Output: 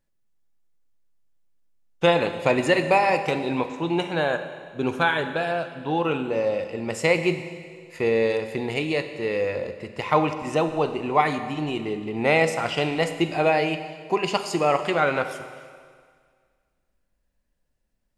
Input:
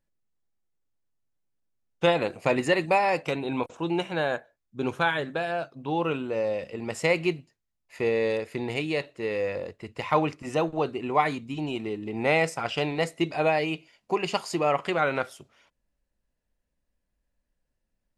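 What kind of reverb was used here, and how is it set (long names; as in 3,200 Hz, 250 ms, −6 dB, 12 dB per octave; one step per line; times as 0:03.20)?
four-comb reverb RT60 1.9 s, combs from 31 ms, DRR 9 dB
level +3 dB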